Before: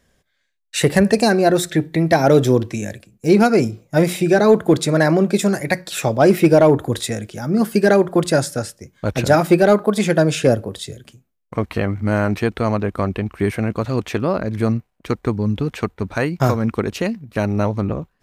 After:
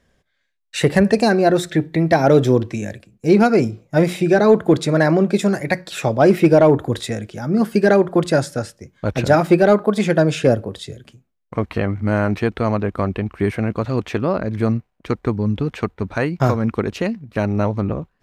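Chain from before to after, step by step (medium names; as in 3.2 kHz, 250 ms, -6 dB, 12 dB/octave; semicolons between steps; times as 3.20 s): treble shelf 7 kHz -11.5 dB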